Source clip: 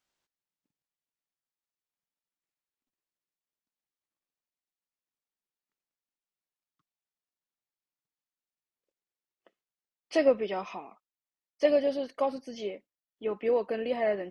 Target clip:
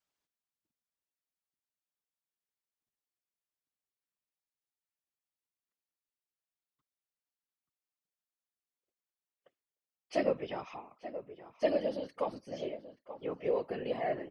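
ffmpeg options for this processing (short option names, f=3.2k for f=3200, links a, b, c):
-filter_complex "[0:a]asplit=2[a][b];[b]adelay=881,lowpass=f=1.9k:p=1,volume=-12.5dB,asplit=2[c][d];[d]adelay=881,lowpass=f=1.9k:p=1,volume=0.16[e];[a][c][e]amix=inputs=3:normalize=0,afftfilt=real='hypot(re,im)*cos(2*PI*random(0))':imag='hypot(re,im)*sin(2*PI*random(1))':win_size=512:overlap=0.75"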